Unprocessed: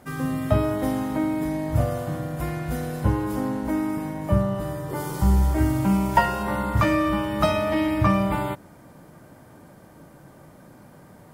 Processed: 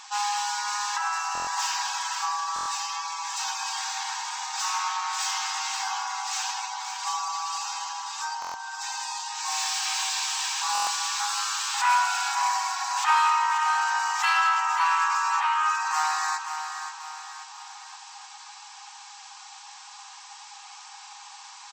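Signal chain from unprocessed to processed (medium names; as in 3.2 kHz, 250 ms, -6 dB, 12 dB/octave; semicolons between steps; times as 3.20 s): tilt EQ +4.5 dB/octave; band-stop 3.8 kHz, Q 26; wide varispeed 0.522×; spectral gate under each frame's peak -25 dB strong; overdrive pedal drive 24 dB, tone 1.2 kHz, clips at -4 dBFS; brick-wall FIR high-pass 760 Hz; feedback delay 535 ms, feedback 45%, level -8.5 dB; buffer glitch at 1.33/2.54/8.40/10.73 s, samples 1024, times 5; trim -3.5 dB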